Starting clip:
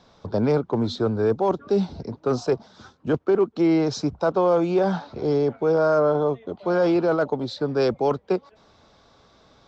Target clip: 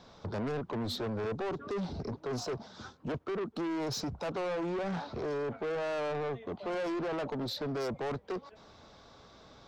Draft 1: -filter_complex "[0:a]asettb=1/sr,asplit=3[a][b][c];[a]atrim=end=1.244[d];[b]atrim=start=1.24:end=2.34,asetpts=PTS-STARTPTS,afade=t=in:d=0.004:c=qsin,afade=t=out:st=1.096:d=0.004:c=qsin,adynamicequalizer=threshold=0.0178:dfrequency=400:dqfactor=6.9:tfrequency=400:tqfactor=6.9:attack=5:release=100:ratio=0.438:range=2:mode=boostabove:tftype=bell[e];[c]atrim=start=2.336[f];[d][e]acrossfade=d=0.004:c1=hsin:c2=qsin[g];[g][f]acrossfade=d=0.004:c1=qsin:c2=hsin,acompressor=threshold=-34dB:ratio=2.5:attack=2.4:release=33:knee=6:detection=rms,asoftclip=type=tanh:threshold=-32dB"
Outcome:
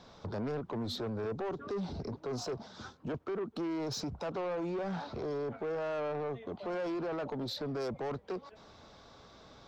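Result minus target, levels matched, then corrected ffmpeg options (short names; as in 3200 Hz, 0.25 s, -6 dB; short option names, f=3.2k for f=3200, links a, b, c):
compressor: peak gain reduction +5.5 dB
-filter_complex "[0:a]asettb=1/sr,asplit=3[a][b][c];[a]atrim=end=1.244[d];[b]atrim=start=1.24:end=2.34,asetpts=PTS-STARTPTS,afade=t=in:d=0.004:c=qsin,afade=t=out:st=1.096:d=0.004:c=qsin,adynamicequalizer=threshold=0.0178:dfrequency=400:dqfactor=6.9:tfrequency=400:tqfactor=6.9:attack=5:release=100:ratio=0.438:range=2:mode=boostabove:tftype=bell[e];[c]atrim=start=2.336[f];[d][e]acrossfade=d=0.004:c1=hsin:c2=qsin[g];[g][f]acrossfade=d=0.004:c1=qsin:c2=hsin,acompressor=threshold=-25dB:ratio=2.5:attack=2.4:release=33:knee=6:detection=rms,asoftclip=type=tanh:threshold=-32dB"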